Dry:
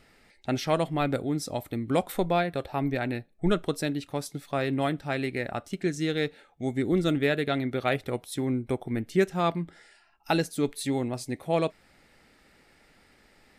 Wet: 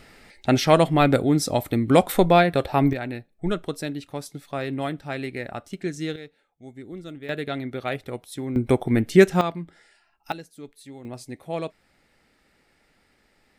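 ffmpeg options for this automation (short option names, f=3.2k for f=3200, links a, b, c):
-af "asetnsamples=n=441:p=0,asendcmd='2.93 volume volume -1dB;6.16 volume volume -13dB;7.29 volume volume -2dB;8.56 volume volume 9.5dB;9.41 volume volume -2dB;10.32 volume volume -14dB;11.05 volume volume -4dB',volume=9dB"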